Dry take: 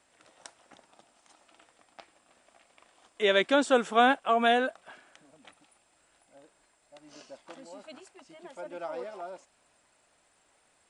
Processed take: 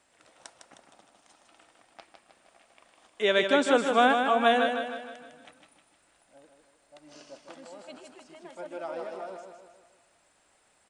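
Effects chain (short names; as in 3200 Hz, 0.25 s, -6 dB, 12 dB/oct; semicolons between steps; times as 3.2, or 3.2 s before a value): feedback echo 0.155 s, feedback 49%, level -6 dB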